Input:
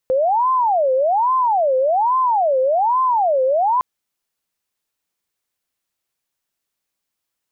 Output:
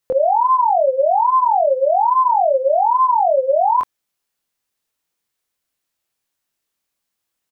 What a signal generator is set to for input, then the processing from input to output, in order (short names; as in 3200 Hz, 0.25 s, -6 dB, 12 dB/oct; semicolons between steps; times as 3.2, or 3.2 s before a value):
siren wail 516–1040 Hz 1.2/s sine -13.5 dBFS 3.71 s
doubler 24 ms -3 dB